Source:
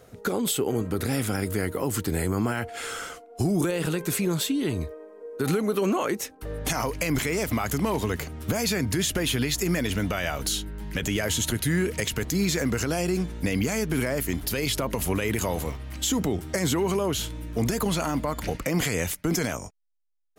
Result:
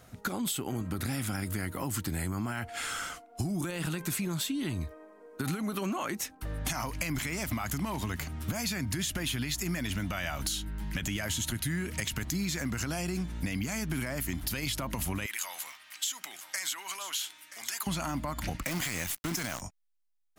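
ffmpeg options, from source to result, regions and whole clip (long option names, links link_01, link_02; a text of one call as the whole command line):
ffmpeg -i in.wav -filter_complex "[0:a]asettb=1/sr,asplit=3[link_01][link_02][link_03];[link_01]atrim=end=15.264[link_04];[link_02]atrim=start=15.26:end=17.87,asetpts=PTS-STARTPTS,afade=type=in:duration=0.004:curve=qsin,afade=type=out:start_time=2.606:duration=0.004:curve=qsin,highpass=1500,aecho=1:1:977:0.158,atrim=end_sample=115101[link_05];[link_03]atrim=start=17.866[link_06];[link_04][link_05]acrossfade=duration=0.004:curve1=hsin:curve2=qsin[link_07];[link_07][link_06]acrossfade=duration=0.004:curve1=qsin:curve2=hsin,asettb=1/sr,asplit=3[link_08][link_09][link_10];[link_08]atrim=end=18.634[link_11];[link_09]atrim=start=18.63:end=19.62,asetpts=PTS-STARTPTS,afade=type=in:duration=0.004:curve=qsin,afade=type=out:start_time=0.986:duration=0.004:curve=qsin,lowshelf=frequency=220:gain=-7,acrusher=bits=6:dc=4:mix=0:aa=0.000001[link_12];[link_10]atrim=start=19.616[link_13];[link_11][link_12]acrossfade=duration=0.004:curve1=hsin:curve2=qsin[link_14];[link_14][link_13]acrossfade=duration=0.004:curve1=qsin:curve2=hsin,equalizer=frequency=450:width_type=o:width=0.56:gain=-14.5,acompressor=threshold=-30dB:ratio=4" out.wav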